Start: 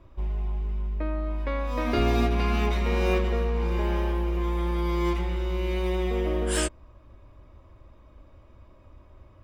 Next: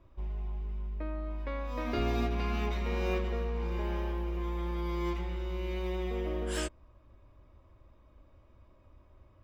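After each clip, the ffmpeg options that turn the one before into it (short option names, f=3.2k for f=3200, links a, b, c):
-af "equalizer=f=9.2k:w=4.6:g=-12,volume=-7.5dB"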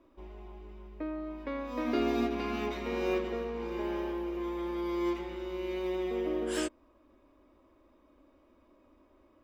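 -af "lowshelf=f=190:t=q:w=3:g=-12"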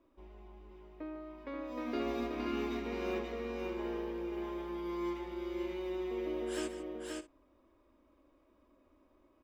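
-af "aecho=1:1:150|529|587:0.211|0.668|0.133,volume=-6.5dB"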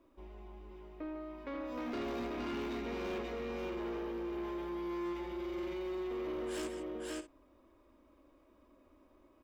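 -af "asoftclip=type=tanh:threshold=-38dB,volume=3dB"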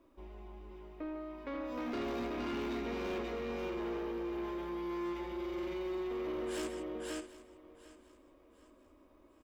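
-af "aecho=1:1:750|1500|2250:0.133|0.0467|0.0163,volume=1dB"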